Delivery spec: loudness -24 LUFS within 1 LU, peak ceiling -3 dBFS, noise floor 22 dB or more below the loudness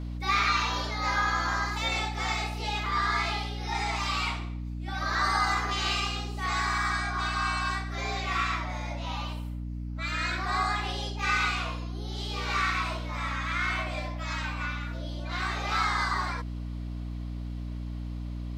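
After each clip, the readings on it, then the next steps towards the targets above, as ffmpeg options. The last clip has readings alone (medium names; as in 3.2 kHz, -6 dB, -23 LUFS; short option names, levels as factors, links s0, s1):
hum 60 Hz; highest harmonic 300 Hz; hum level -33 dBFS; loudness -29.5 LUFS; peak level -13.5 dBFS; loudness target -24.0 LUFS
-> -af "bandreject=f=60:t=h:w=4,bandreject=f=120:t=h:w=4,bandreject=f=180:t=h:w=4,bandreject=f=240:t=h:w=4,bandreject=f=300:t=h:w=4"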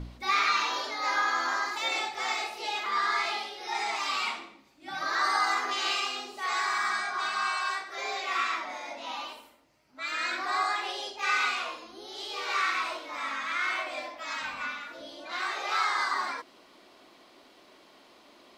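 hum not found; loudness -29.5 LUFS; peak level -15.0 dBFS; loudness target -24.0 LUFS
-> -af "volume=1.88"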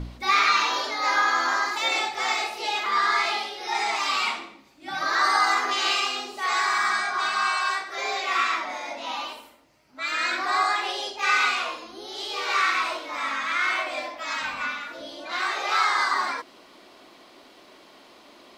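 loudness -24.0 LUFS; peak level -9.5 dBFS; noise floor -52 dBFS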